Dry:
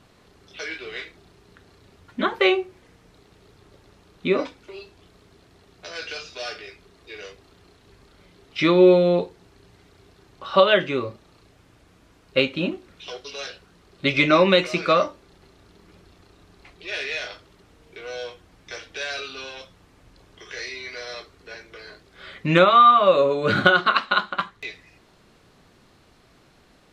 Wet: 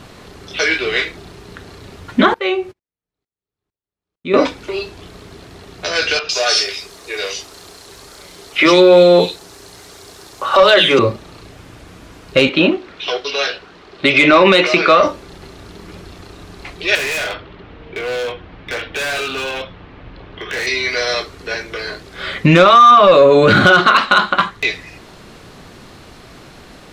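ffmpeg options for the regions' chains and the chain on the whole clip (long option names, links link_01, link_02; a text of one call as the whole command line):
ffmpeg -i in.wav -filter_complex "[0:a]asettb=1/sr,asplit=3[link_01][link_02][link_03];[link_01]atrim=end=2.344[link_04];[link_02]atrim=start=2.34:end=4.34,asetpts=PTS-STARTPTS,afade=type=in:duration=0.004:curve=qsin,afade=type=out:start_time=1.996:duration=0.004:curve=qsin,agate=range=-43dB:threshold=-46dB:ratio=16:release=100:detection=peak,aeval=exprs='val(0)*pow(10,-24*if(lt(mod(-2.2*n/s,1),2*abs(-2.2)/1000),1-mod(-2.2*n/s,1)/(2*abs(-2.2)/1000),(mod(-2.2*n/s,1)-2*abs(-2.2)/1000)/(1-2*abs(-2.2)/1000))/20)':channel_layout=same[link_05];[link_03]atrim=start=4.336[link_06];[link_04][link_05]acrossfade=duration=0.004:curve1=hsin:curve2=qsin[link_07];[link_07][link_06]acrossfade=duration=0.004:curve1=qsin:curve2=hsin,asettb=1/sr,asplit=3[link_08][link_09][link_10];[link_08]atrim=end=6.194[link_11];[link_09]atrim=start=6.19:end=10.99,asetpts=PTS-STARTPTS,afade=type=in:duration=0.004:curve=qsin,afade=type=out:start_time=4.796:duration=0.004:curve=qsin,bass=frequency=250:gain=-10,treble=frequency=4000:gain=10,acrossover=split=260|2700[link_12][link_13][link_14];[link_12]adelay=40[link_15];[link_14]adelay=100[link_16];[link_15][link_13][link_16]amix=inputs=3:normalize=0,atrim=end_sample=211680[link_17];[link_10]atrim=start=10.986[link_18];[link_11][link_17]acrossfade=duration=0.004:curve1=hsin:curve2=qsin[link_19];[link_19][link_18]acrossfade=duration=0.004:curve1=qsin:curve2=hsin,asettb=1/sr,asplit=3[link_20][link_21][link_22];[link_20]atrim=end=12.494[link_23];[link_21]atrim=start=12.49:end=15.03,asetpts=PTS-STARTPTS,afade=type=in:duration=0.004:curve=qsin,afade=type=out:start_time=2.536:duration=0.004:curve=qsin,acrossover=split=270 5100:gain=0.251 1 0.126[link_24][link_25][link_26];[link_24][link_25][link_26]amix=inputs=3:normalize=0,bandreject=frequency=530:width=17[link_27];[link_22]atrim=start=15.026[link_28];[link_23][link_27]acrossfade=duration=0.004:curve1=hsin:curve2=qsin[link_29];[link_29][link_28]acrossfade=duration=0.004:curve1=qsin:curve2=hsin,asettb=1/sr,asplit=3[link_30][link_31][link_32];[link_30]atrim=end=16.954[link_33];[link_31]atrim=start=16.95:end=20.67,asetpts=PTS-STARTPTS,afade=type=in:duration=0.004:curve=qsin,afade=type=out:start_time=3.716:duration=0.004:curve=qsin,lowpass=frequency=3400:width=0.5412,lowpass=frequency=3400:width=1.3066,asoftclip=type=hard:threshold=-35.5dB[link_34];[link_32]atrim=start=20.666[link_35];[link_33][link_34]acrossfade=duration=0.004:curve1=hsin:curve2=qsin[link_36];[link_36][link_35]acrossfade=duration=0.004:curve1=qsin:curve2=hsin,acontrast=81,alimiter=level_in=10.5dB:limit=-1dB:release=50:level=0:latency=1,volume=-1dB" out.wav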